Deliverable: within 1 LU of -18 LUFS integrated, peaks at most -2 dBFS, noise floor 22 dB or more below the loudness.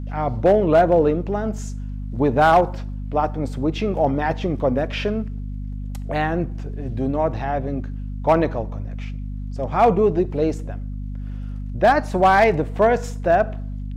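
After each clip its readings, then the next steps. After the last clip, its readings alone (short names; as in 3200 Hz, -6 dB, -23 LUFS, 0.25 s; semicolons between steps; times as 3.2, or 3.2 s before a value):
clipped 0.6%; flat tops at -8.0 dBFS; hum 50 Hz; harmonics up to 250 Hz; hum level -26 dBFS; loudness -20.5 LUFS; peak -8.0 dBFS; loudness target -18.0 LUFS
-> clip repair -8 dBFS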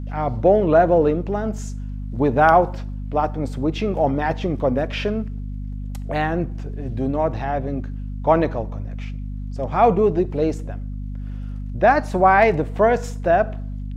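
clipped 0.0%; hum 50 Hz; harmonics up to 250 Hz; hum level -26 dBFS
-> de-hum 50 Hz, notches 5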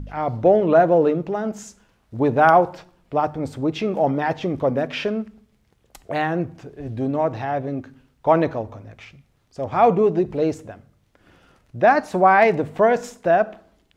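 hum none; loudness -20.0 LUFS; peak -3.0 dBFS; loudness target -18.0 LUFS
-> gain +2 dB; limiter -2 dBFS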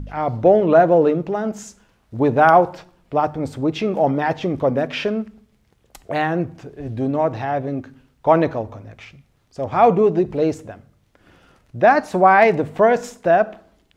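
loudness -18.0 LUFS; peak -2.0 dBFS; noise floor -61 dBFS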